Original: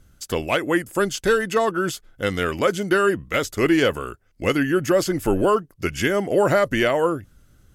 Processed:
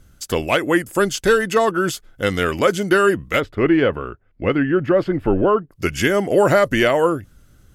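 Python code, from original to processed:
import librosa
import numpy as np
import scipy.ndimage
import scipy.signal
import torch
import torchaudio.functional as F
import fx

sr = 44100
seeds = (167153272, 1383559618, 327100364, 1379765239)

y = fx.air_absorb(x, sr, metres=450.0, at=(3.39, 5.71), fade=0.02)
y = y * 10.0 ** (3.5 / 20.0)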